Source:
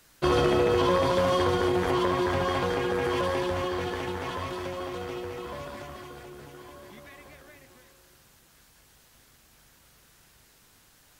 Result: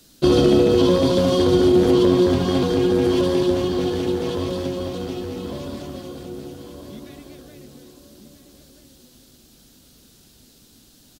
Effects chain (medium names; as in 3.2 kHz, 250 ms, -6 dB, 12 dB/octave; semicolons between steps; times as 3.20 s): graphic EQ 250/1000/2000/4000 Hz +10/-8/-10/+6 dB; echo from a far wall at 220 m, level -8 dB; trim +5.5 dB